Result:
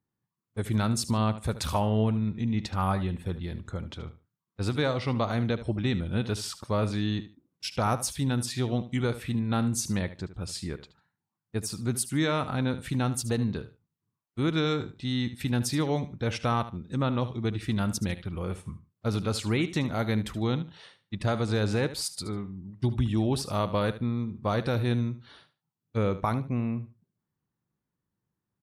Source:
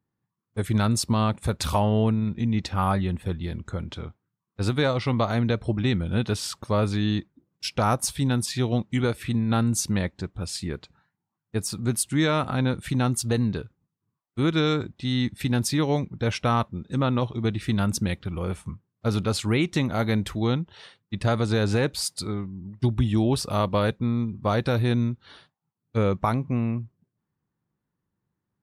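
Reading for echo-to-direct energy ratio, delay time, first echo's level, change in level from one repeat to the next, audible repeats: −14.0 dB, 74 ms, −14.0 dB, −13.5 dB, 2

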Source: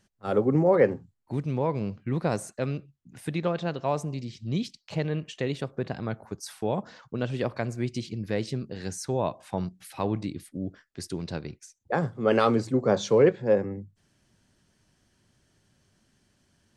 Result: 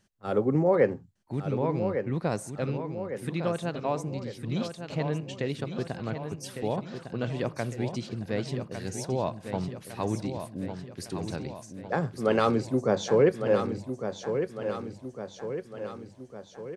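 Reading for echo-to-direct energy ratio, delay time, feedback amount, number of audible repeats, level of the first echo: −6.5 dB, 1,155 ms, 54%, 6, −8.0 dB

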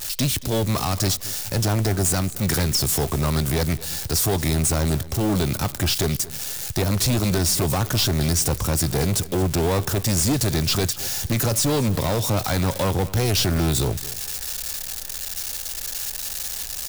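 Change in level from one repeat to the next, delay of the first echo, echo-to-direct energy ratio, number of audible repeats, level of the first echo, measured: −12.5 dB, 226 ms, −17.5 dB, 2, −18.0 dB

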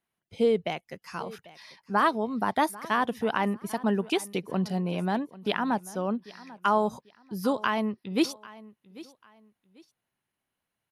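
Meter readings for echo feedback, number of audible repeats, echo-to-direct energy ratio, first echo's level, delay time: 28%, 2, −19.0 dB, −19.5 dB, 793 ms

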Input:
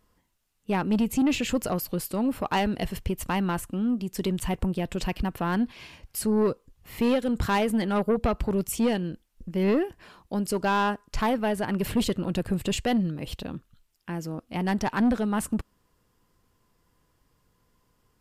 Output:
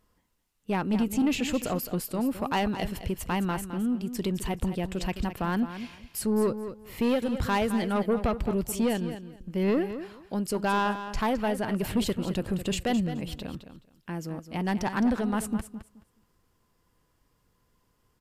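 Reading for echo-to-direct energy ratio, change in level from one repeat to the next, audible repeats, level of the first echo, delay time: −11.0 dB, −14.5 dB, 2, −11.0 dB, 213 ms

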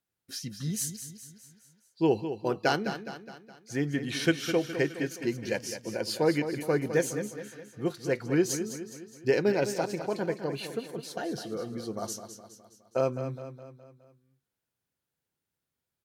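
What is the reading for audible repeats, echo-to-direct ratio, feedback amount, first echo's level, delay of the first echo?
5, −9.0 dB, 50%, −10.0 dB, 208 ms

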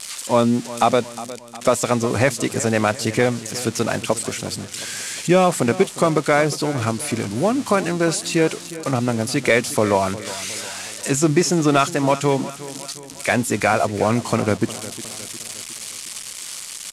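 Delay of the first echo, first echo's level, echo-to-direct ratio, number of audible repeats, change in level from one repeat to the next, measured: 359 ms, −16.0 dB, −14.5 dB, 4, −5.5 dB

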